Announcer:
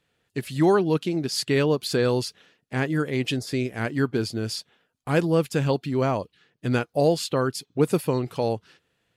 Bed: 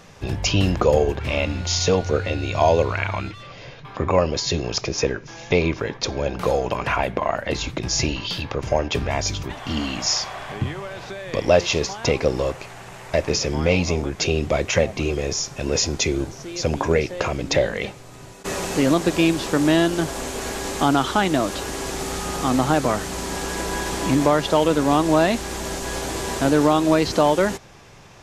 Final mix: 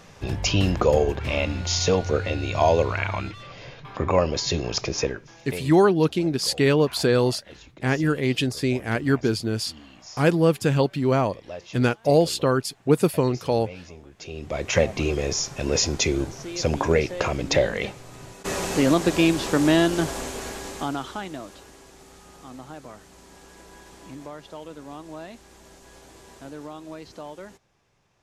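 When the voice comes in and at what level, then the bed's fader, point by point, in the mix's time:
5.10 s, +2.5 dB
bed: 0:04.97 −2 dB
0:05.84 −21.5 dB
0:14.12 −21.5 dB
0:14.77 −1 dB
0:20.07 −1 dB
0:21.89 −21.5 dB

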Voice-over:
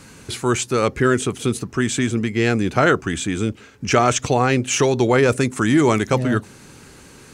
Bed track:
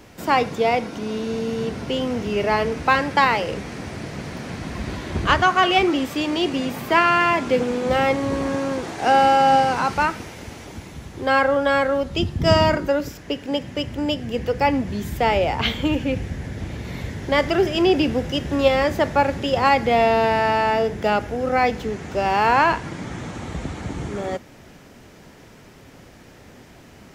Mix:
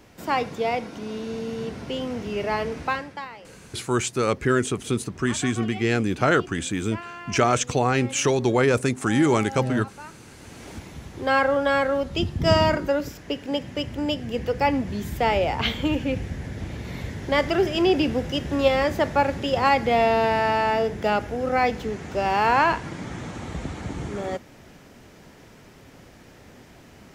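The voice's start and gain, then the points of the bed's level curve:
3.45 s, −4.0 dB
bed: 0:02.83 −5.5 dB
0:03.30 −21.5 dB
0:10.07 −21.5 dB
0:10.68 −2.5 dB

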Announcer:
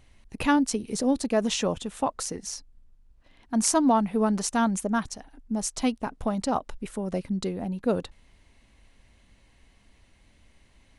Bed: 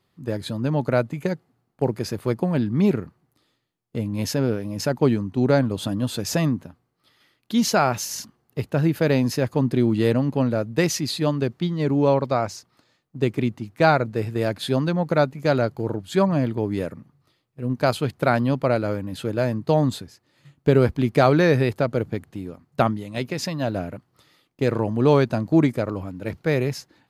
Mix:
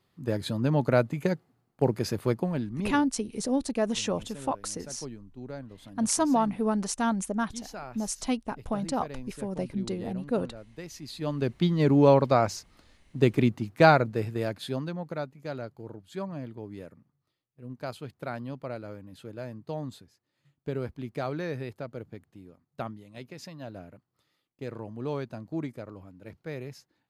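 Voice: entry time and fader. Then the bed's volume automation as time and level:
2.45 s, −3.0 dB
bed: 0:02.25 −2 dB
0:03.23 −21.5 dB
0:10.85 −21.5 dB
0:11.60 0 dB
0:13.79 0 dB
0:15.31 −16 dB

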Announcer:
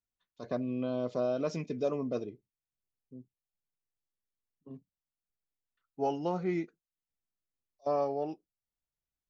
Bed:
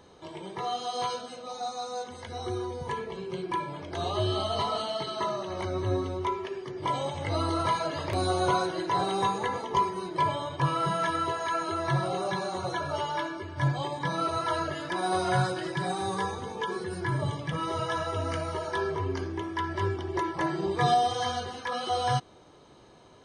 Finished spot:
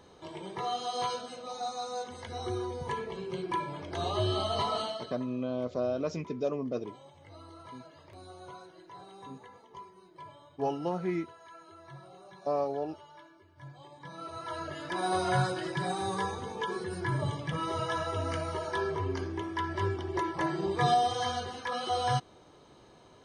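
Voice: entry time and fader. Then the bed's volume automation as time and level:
4.60 s, 0.0 dB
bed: 0:04.86 −1.5 dB
0:05.27 −22 dB
0:13.67 −22 dB
0:15.01 −2 dB

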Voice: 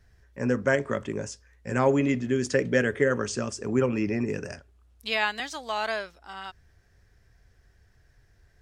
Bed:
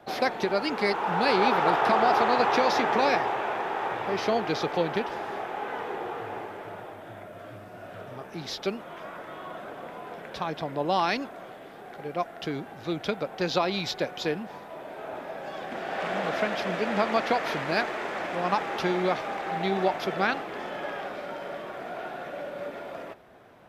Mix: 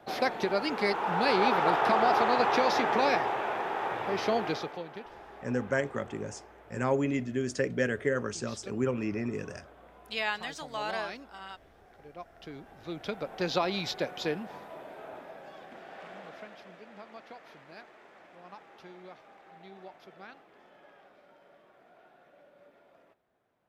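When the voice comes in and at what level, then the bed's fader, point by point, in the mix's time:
5.05 s, −5.5 dB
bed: 0:04.48 −2.5 dB
0:04.84 −15 dB
0:12.25 −15 dB
0:13.42 −3 dB
0:14.63 −3 dB
0:16.89 −23 dB

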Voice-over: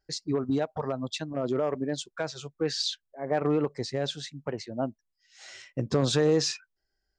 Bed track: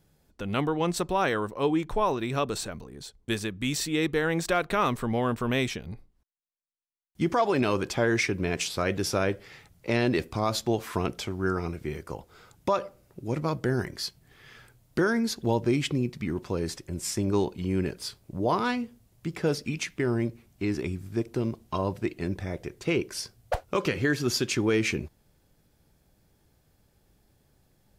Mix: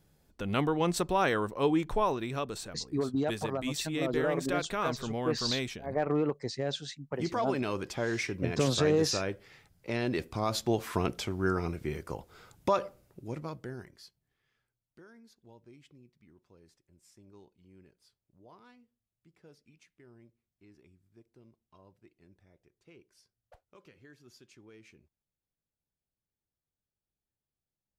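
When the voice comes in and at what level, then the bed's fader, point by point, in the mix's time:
2.65 s, −3.0 dB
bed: 0:01.93 −1.5 dB
0:02.48 −7.5 dB
0:09.91 −7.5 dB
0:10.81 −1.5 dB
0:12.88 −1.5 dB
0:14.70 −30.5 dB

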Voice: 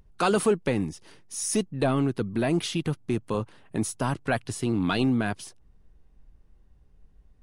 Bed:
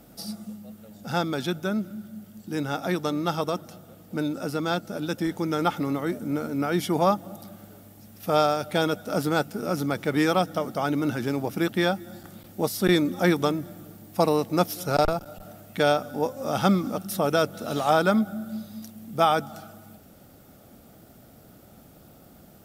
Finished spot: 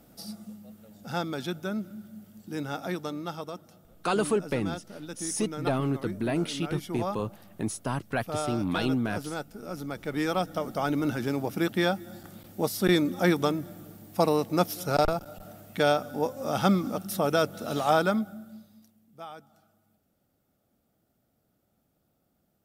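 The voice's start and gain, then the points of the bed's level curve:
3.85 s, −3.5 dB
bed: 0:02.81 −5 dB
0:03.49 −11 dB
0:09.61 −11 dB
0:10.79 −2 dB
0:17.98 −2 dB
0:19.05 −22 dB

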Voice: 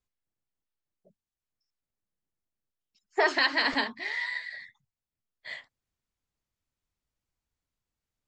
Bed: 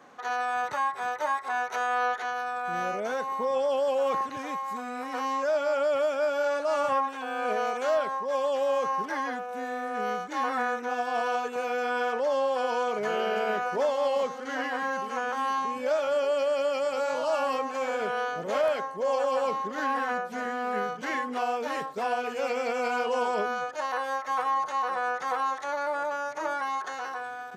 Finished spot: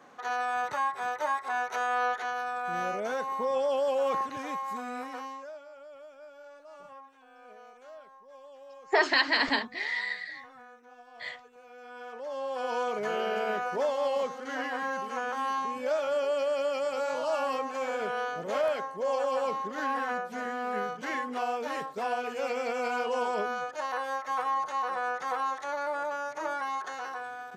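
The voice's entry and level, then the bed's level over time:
5.75 s, +0.5 dB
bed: 0:04.98 −1.5 dB
0:05.69 −23 dB
0:11.61 −23 dB
0:12.76 −2.5 dB

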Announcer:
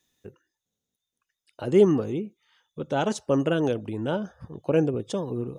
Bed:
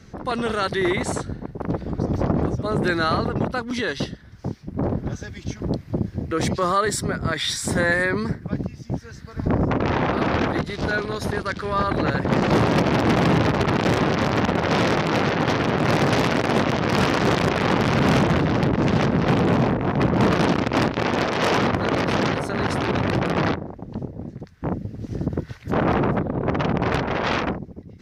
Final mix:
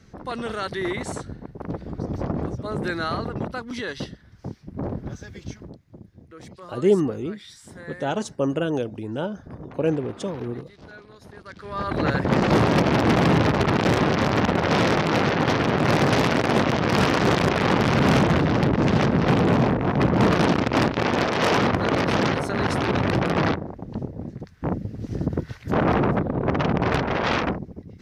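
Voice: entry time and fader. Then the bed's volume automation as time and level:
5.10 s, −0.5 dB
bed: 0:05.54 −5.5 dB
0:05.75 −20.5 dB
0:11.28 −20.5 dB
0:12.05 0 dB

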